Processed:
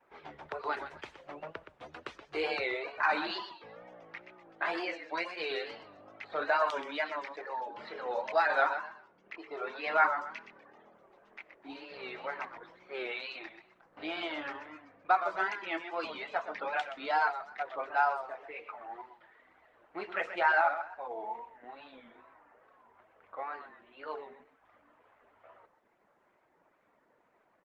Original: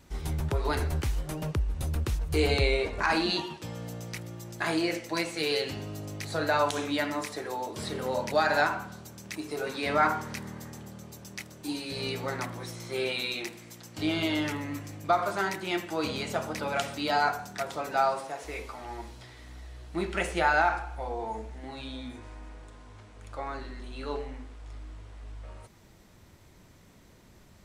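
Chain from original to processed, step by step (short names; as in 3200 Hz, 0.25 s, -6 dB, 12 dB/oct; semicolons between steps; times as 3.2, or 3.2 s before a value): low-pass opened by the level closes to 1600 Hz, open at -22.5 dBFS; reverb removal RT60 1.1 s; BPF 590–2500 Hz; feedback echo 0.126 s, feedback 28%, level -10 dB; on a send at -20 dB: reverb, pre-delay 3 ms; on the sum: wow and flutter 110 cents; Opus 20 kbps 48000 Hz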